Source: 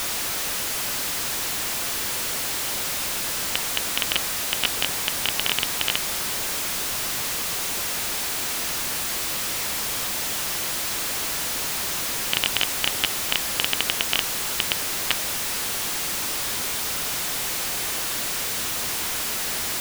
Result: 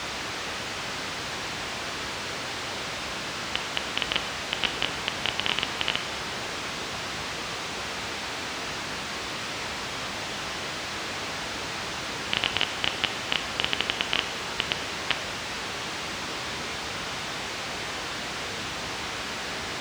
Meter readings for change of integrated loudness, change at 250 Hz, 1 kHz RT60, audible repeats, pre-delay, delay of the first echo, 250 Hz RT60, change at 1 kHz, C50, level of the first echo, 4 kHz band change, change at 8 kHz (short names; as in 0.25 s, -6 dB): -6.0 dB, +0.5 dB, 0.90 s, none, 6 ms, none, 1.0 s, 0.0 dB, 10.5 dB, none, -3.0 dB, -12.5 dB